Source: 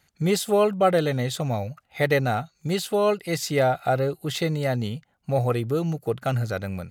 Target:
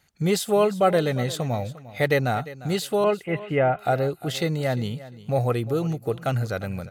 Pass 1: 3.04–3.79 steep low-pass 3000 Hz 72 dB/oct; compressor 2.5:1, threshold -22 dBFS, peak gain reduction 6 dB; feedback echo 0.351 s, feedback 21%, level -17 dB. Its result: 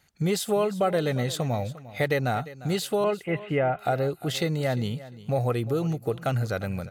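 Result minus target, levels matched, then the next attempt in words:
compressor: peak gain reduction +6 dB
3.04–3.79 steep low-pass 3000 Hz 72 dB/oct; feedback echo 0.351 s, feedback 21%, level -17 dB

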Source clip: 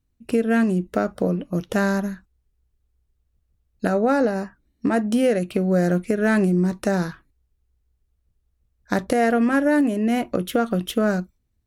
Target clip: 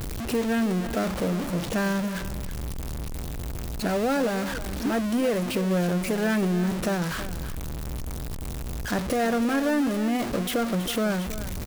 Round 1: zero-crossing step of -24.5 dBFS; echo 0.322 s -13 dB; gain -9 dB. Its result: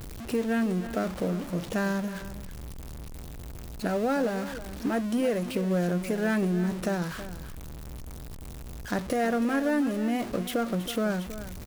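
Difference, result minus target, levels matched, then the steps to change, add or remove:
zero-crossing step: distortion -6 dB
change: zero-crossing step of -16.5 dBFS

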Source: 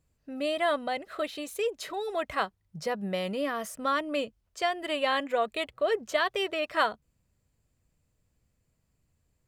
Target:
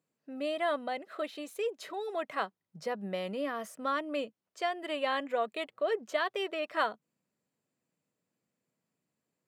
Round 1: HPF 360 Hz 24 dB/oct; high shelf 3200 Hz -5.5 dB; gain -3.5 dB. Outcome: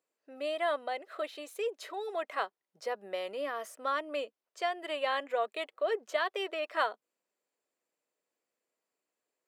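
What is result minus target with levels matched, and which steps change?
250 Hz band -7.5 dB
change: HPF 180 Hz 24 dB/oct

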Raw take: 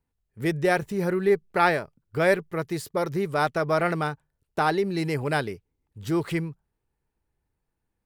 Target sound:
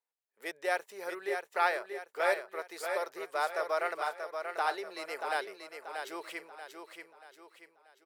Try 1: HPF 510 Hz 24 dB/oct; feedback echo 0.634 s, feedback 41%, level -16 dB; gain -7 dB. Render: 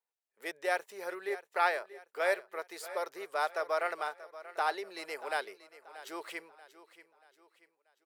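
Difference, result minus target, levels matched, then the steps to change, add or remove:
echo-to-direct -9.5 dB
change: feedback echo 0.634 s, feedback 41%, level -6.5 dB

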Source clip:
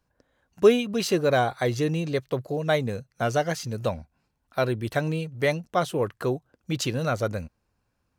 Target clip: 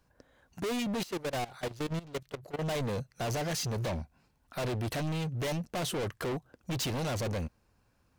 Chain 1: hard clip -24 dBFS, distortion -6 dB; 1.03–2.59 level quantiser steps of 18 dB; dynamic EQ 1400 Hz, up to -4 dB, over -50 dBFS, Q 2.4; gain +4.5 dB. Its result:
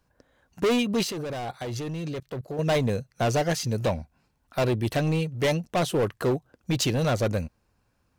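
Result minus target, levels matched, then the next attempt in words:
hard clip: distortion -5 dB
hard clip -35.5 dBFS, distortion -1 dB; 1.03–2.59 level quantiser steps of 18 dB; dynamic EQ 1400 Hz, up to -4 dB, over -50 dBFS, Q 2.4; gain +4.5 dB

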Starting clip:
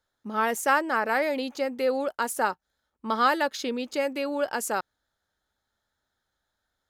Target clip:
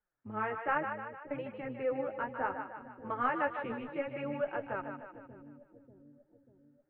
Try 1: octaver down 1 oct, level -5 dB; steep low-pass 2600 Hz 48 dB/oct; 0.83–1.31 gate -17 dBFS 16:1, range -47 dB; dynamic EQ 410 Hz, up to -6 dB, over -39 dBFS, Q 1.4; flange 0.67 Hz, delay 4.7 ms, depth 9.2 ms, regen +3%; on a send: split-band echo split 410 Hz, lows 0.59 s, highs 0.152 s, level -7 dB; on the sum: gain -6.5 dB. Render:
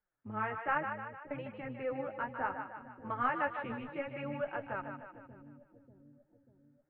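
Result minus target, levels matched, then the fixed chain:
125 Hz band +3.0 dB
octaver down 1 oct, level -5 dB; steep low-pass 2600 Hz 48 dB/oct; 0.83–1.31 gate -17 dBFS 16:1, range -47 dB; dynamic EQ 110 Hz, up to -6 dB, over -39 dBFS, Q 1.4; flange 0.67 Hz, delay 4.7 ms, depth 9.2 ms, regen +3%; on a send: split-band echo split 410 Hz, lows 0.59 s, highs 0.152 s, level -7 dB; on the sum: gain -6.5 dB

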